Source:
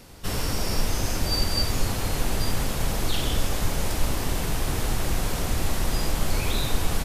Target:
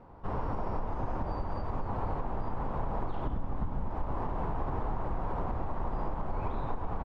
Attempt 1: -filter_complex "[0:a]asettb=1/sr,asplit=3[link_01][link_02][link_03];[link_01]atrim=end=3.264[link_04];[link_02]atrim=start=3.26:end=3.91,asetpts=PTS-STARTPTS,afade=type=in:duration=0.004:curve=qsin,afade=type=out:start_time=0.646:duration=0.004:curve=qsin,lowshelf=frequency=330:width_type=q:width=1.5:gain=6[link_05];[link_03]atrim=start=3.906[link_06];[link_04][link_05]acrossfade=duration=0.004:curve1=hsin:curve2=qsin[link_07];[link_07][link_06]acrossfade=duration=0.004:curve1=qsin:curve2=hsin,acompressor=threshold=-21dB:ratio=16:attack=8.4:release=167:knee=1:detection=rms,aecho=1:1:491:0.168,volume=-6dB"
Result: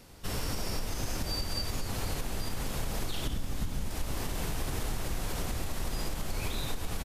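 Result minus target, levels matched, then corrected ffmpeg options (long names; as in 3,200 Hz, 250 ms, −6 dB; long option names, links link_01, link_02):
1,000 Hz band −7.5 dB
-filter_complex "[0:a]asettb=1/sr,asplit=3[link_01][link_02][link_03];[link_01]atrim=end=3.264[link_04];[link_02]atrim=start=3.26:end=3.91,asetpts=PTS-STARTPTS,afade=type=in:duration=0.004:curve=qsin,afade=type=out:start_time=0.646:duration=0.004:curve=qsin,lowshelf=frequency=330:width_type=q:width=1.5:gain=6[link_05];[link_03]atrim=start=3.906[link_06];[link_04][link_05]acrossfade=duration=0.004:curve1=hsin:curve2=qsin[link_07];[link_07][link_06]acrossfade=duration=0.004:curve1=qsin:curve2=hsin,acompressor=threshold=-21dB:ratio=16:attack=8.4:release=167:knee=1:detection=rms,lowpass=frequency=970:width_type=q:width=2.8,aecho=1:1:491:0.168,volume=-6dB"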